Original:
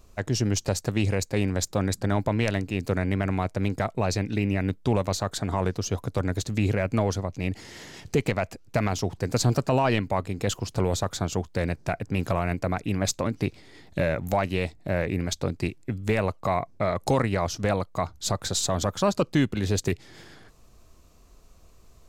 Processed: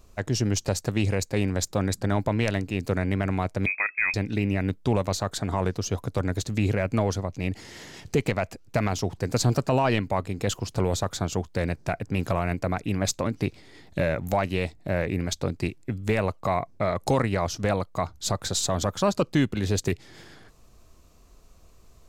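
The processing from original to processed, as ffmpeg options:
-filter_complex "[0:a]asettb=1/sr,asplit=3[a][b][c];[a]atrim=end=3.664[d];[b]atrim=start=3.66:end=4.14,asetpts=PTS-STARTPTS,afade=t=in:d=0.004:c=qsin,afade=t=out:st=0.476:d=0.004:c=qsin,lowpass=f=2.2k:t=q:w=0.5098,lowpass=f=2.2k:t=q:w=0.6013,lowpass=f=2.2k:t=q:w=0.9,lowpass=f=2.2k:t=q:w=2.563,afreqshift=-2600[e];[c]atrim=start=4.136[f];[d][e]acrossfade=d=0.004:c1=hsin:c2=qsin[g];[g][f]acrossfade=d=0.004:c1=qsin:c2=hsin"

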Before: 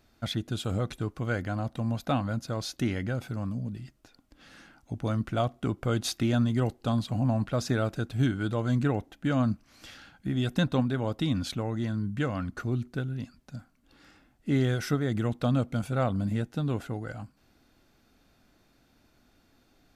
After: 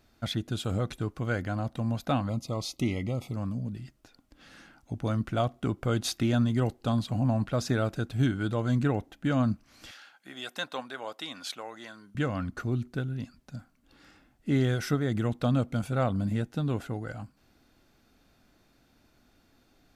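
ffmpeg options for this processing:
-filter_complex "[0:a]asettb=1/sr,asplit=3[a][b][c];[a]atrim=end=2.294[d];[b]atrim=start=2.29:end=3.35,asetpts=PTS-STARTPTS,afade=t=in:d=0.004:c=qsin,afade=t=out:st=1.056:d=0.004:c=qsin,asuperstop=centerf=1600:order=20:qfactor=2.6[e];[c]atrim=start=3.346[f];[d][e]acrossfade=d=0.004:c1=hsin:c2=qsin[g];[g][f]acrossfade=d=0.004:c1=qsin:c2=hsin,asettb=1/sr,asplit=3[h][i][j];[h]atrim=end=9.914[k];[i]atrim=start=9.91:end=12.15,asetpts=PTS-STARTPTS,afade=t=in:d=0.004:c=qsin,afade=t=out:st=2.236:d=0.004:c=qsin,highpass=700[l];[j]atrim=start=12.146[m];[k][l]acrossfade=d=0.004:c1=hsin:c2=qsin[n];[n][m]acrossfade=d=0.004:c1=qsin:c2=hsin"

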